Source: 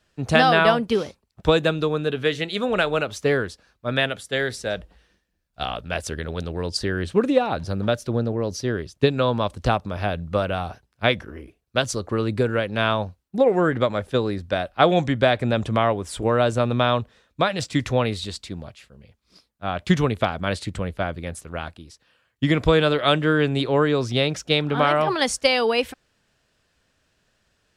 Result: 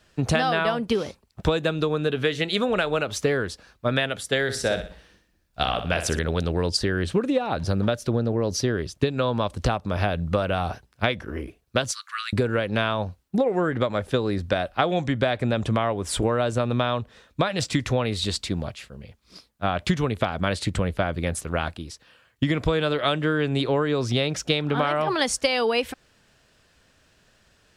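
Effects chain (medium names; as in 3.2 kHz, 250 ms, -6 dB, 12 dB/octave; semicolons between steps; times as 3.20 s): 11.92–12.33 s: steep high-pass 1.3 kHz 48 dB/octave; compression 6:1, threshold -27 dBFS, peak gain reduction 15 dB; 4.42–6.19 s: flutter echo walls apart 10.5 m, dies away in 0.41 s; trim +7 dB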